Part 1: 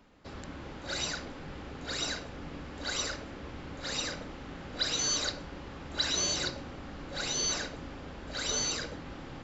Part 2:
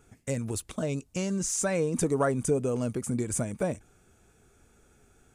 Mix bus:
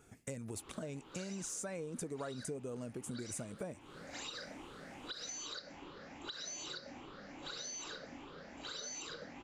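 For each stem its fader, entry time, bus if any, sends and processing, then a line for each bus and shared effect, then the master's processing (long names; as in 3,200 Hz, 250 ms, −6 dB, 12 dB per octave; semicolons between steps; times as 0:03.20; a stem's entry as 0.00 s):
−7.0 dB, 0.30 s, no send, rippled gain that drifts along the octave scale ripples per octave 0.64, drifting +2.5 Hz, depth 11 dB; parametric band 67 Hz −9.5 dB 2 octaves; downward compressor, threshold −31 dBFS, peak gain reduction 9.5 dB
−1.5 dB, 0.00 s, no send, no processing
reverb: not used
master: low-shelf EQ 68 Hz −10.5 dB; downward compressor 4 to 1, threshold −42 dBFS, peak gain reduction 16 dB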